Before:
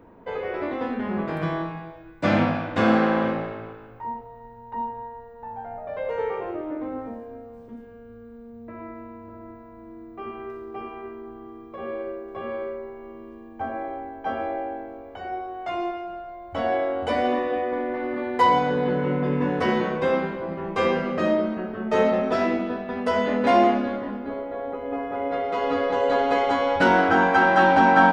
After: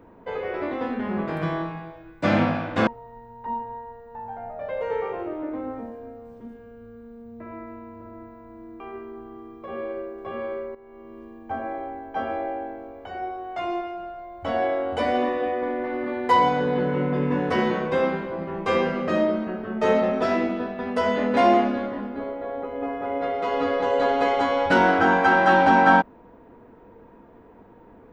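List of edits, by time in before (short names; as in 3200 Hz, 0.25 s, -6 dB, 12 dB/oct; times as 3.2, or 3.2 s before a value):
2.87–4.15 cut
10.08–10.9 cut
12.85–13.31 fade in, from -13.5 dB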